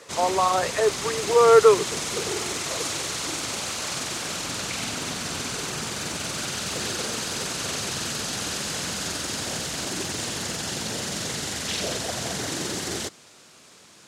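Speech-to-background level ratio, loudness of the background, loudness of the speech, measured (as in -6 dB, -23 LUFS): 8.5 dB, -28.0 LUFS, -19.5 LUFS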